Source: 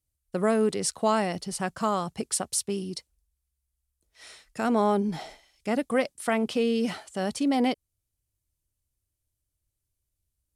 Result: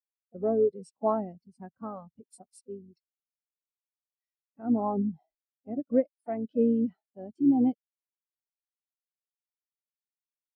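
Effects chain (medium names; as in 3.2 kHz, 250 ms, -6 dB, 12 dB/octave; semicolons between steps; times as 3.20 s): harmony voices -12 st -10 dB, +4 st -10 dB; spectral contrast expander 2.5:1; trim -4 dB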